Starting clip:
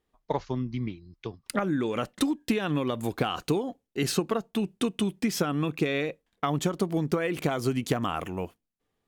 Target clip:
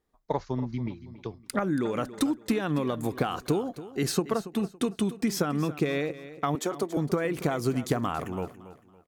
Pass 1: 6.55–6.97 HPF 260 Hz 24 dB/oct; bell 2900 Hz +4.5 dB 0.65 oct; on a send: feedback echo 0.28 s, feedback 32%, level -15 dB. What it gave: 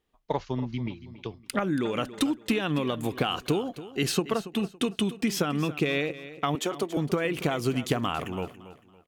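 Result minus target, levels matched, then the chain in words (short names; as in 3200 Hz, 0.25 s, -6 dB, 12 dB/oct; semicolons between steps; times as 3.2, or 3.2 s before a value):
4000 Hz band +5.5 dB
6.55–6.97 HPF 260 Hz 24 dB/oct; bell 2900 Hz -6.5 dB 0.65 oct; on a send: feedback echo 0.28 s, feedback 32%, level -15 dB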